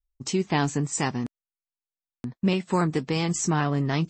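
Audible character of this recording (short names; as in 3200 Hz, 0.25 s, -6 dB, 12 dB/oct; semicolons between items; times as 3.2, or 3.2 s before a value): noise floor -95 dBFS; spectral tilt -5.0 dB/oct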